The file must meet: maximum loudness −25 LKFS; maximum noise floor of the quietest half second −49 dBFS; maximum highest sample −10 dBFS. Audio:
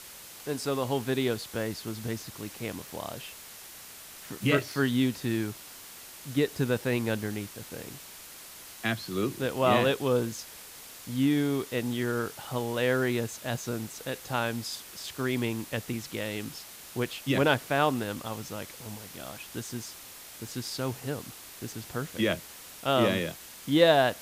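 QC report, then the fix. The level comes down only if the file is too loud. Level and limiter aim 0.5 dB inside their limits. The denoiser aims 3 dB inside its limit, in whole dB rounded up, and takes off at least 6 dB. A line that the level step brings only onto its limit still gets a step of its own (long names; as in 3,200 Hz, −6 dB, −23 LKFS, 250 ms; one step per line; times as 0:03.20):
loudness −30.0 LKFS: in spec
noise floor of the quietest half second −47 dBFS: out of spec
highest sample −9.5 dBFS: out of spec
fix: broadband denoise 6 dB, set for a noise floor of −47 dBFS
brickwall limiter −10.5 dBFS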